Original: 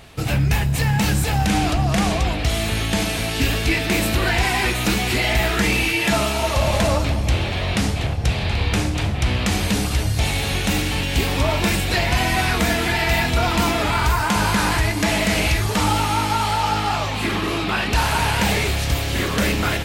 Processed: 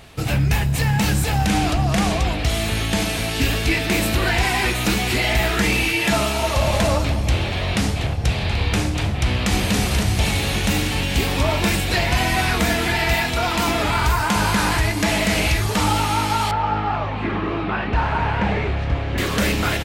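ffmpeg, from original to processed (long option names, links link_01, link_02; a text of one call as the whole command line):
ffmpeg -i in.wav -filter_complex "[0:a]asplit=2[link_01][link_02];[link_02]afade=type=in:start_time=9.22:duration=0.01,afade=type=out:start_time=9.74:duration=0.01,aecho=0:1:280|560|840|1120|1400|1680|1960|2240|2520|2800|3080|3360:0.595662|0.446747|0.33506|0.251295|0.188471|0.141353|0.106015|0.0795113|0.0596335|0.0447251|0.0335438|0.0251579[link_03];[link_01][link_03]amix=inputs=2:normalize=0,asettb=1/sr,asplit=3[link_04][link_05][link_06];[link_04]atrim=end=13.154[link_07];[link_05]atrim=start=13.15:end=13.68,asetpts=PTS-STARTPTS,afade=type=in:duration=0.004:curve=qsin,afade=type=out:start_time=0.526:duration=0.004:curve=qsin,lowshelf=frequency=250:gain=-6[link_08];[link_06]atrim=start=13.676[link_09];[link_07][link_08]acrossfade=duration=0.004:curve1=hsin:curve2=qsin[link_10];[link_10][link_09]acrossfade=duration=0.004:curve1=qsin:curve2=hsin,asettb=1/sr,asplit=3[link_11][link_12][link_13];[link_11]atrim=end=16.514[link_14];[link_12]atrim=start=16.51:end=19.18,asetpts=PTS-STARTPTS,afade=type=in:duration=0.004:curve=qsin,afade=type=out:start_time=2.666:duration=0.004:curve=qsin,lowpass=1800[link_15];[link_13]atrim=start=19.176[link_16];[link_14][link_15]acrossfade=duration=0.004:curve1=hsin:curve2=qsin[link_17];[link_17][link_16]acrossfade=duration=0.004:curve1=qsin:curve2=hsin" out.wav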